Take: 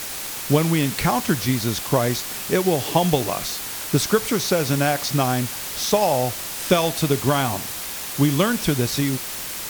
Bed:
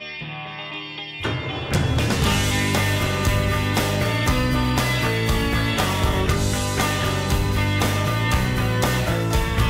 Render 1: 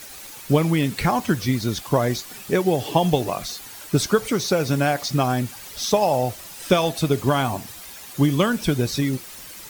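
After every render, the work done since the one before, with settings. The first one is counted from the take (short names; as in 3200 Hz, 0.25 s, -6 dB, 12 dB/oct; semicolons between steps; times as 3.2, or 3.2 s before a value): denoiser 11 dB, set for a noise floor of -31 dBFS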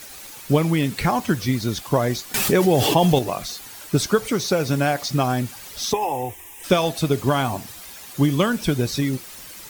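2.34–3.19 fast leveller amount 70%; 5.93–6.64 fixed phaser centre 910 Hz, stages 8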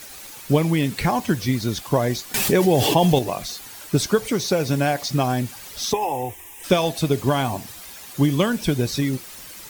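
dynamic EQ 1300 Hz, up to -6 dB, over -43 dBFS, Q 5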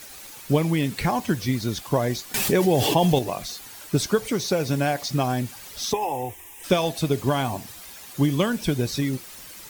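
gain -2.5 dB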